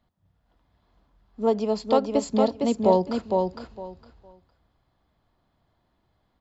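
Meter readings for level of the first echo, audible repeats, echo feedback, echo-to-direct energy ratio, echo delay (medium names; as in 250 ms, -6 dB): -4.0 dB, 3, 19%, -4.0 dB, 459 ms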